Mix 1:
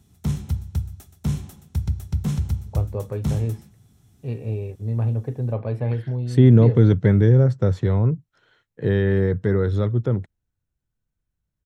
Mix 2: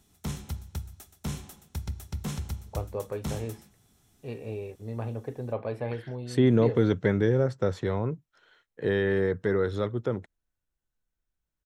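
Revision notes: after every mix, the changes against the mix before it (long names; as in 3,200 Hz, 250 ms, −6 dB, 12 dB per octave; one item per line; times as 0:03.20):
master: add parametric band 110 Hz −13.5 dB 2.2 octaves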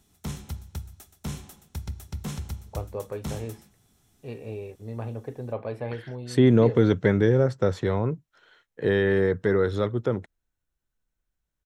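second voice +3.5 dB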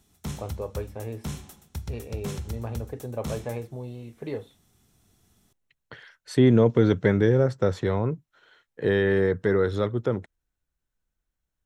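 first voice: entry −2.35 s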